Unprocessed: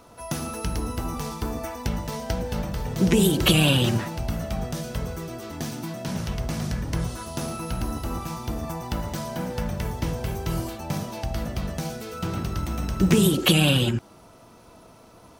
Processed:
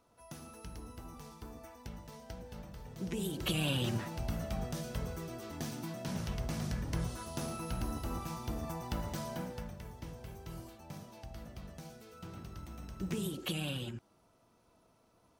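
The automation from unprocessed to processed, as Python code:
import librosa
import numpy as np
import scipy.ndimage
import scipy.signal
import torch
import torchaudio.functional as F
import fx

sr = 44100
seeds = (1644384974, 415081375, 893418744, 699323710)

y = fx.gain(x, sr, db=fx.line((3.12, -19.0), (4.23, -8.5), (9.33, -8.5), (9.79, -18.5)))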